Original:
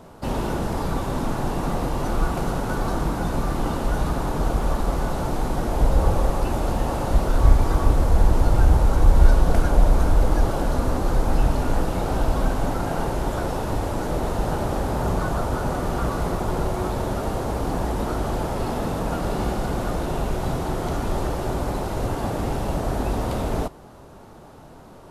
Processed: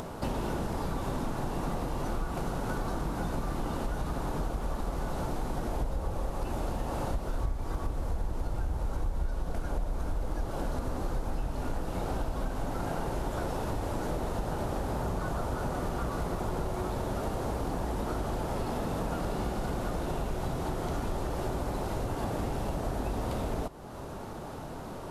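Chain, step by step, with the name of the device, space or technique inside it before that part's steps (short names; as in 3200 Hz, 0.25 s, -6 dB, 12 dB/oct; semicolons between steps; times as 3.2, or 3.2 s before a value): upward and downward compression (upward compressor, threshold -33 dBFS; compressor, threshold -29 dBFS, peak gain reduction 20.5 dB)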